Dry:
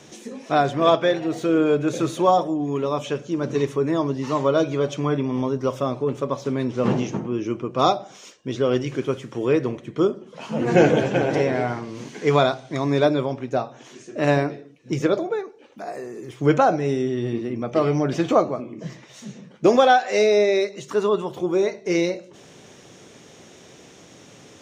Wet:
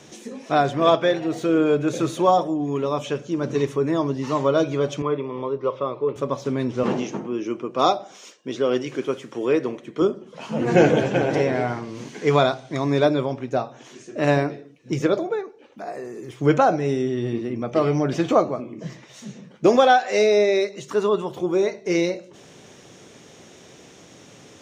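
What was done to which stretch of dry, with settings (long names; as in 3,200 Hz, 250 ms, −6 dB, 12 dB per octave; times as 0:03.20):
0:05.02–0:06.16: loudspeaker in its box 210–3,500 Hz, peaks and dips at 250 Hz −10 dB, 470 Hz +4 dB, 720 Hz −9 dB, 1,100 Hz +4 dB, 1,600 Hz −9 dB, 2,900 Hz −5 dB
0:06.83–0:10.02: high-pass filter 220 Hz
0:15.35–0:16.05: high-shelf EQ 5,800 Hz −6 dB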